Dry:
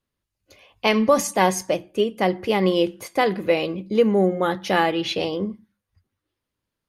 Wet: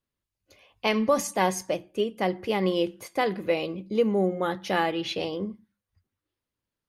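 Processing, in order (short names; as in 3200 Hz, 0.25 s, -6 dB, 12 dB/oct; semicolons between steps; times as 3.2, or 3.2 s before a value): 3.54–4.38 bell 1700 Hz -6.5 dB 0.34 oct; gain -5.5 dB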